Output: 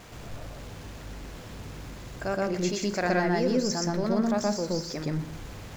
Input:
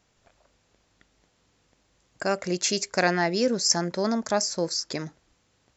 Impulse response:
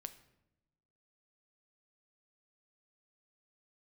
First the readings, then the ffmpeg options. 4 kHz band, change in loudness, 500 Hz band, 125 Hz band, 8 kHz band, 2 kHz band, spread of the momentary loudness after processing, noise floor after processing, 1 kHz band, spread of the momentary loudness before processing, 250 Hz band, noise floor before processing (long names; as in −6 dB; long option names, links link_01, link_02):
−7.5 dB, −2.5 dB, −1.0 dB, +3.5 dB, can't be measured, −3.5 dB, 17 LU, −43 dBFS, −2.0 dB, 9 LU, +2.0 dB, −69 dBFS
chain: -filter_complex "[0:a]aeval=exprs='val(0)+0.5*0.0188*sgn(val(0))':channel_layout=same,highshelf=frequency=3300:gain=-9.5,asplit=2[link_01][link_02];[1:a]atrim=start_sample=2205,lowshelf=frequency=230:gain=11,adelay=122[link_03];[link_02][link_03]afir=irnorm=-1:irlink=0,volume=4dB[link_04];[link_01][link_04]amix=inputs=2:normalize=0,volume=-5.5dB"